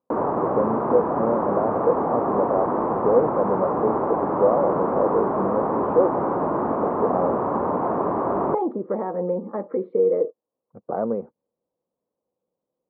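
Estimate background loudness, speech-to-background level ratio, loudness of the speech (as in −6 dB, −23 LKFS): −24.0 LKFS, −1.0 dB, −25.0 LKFS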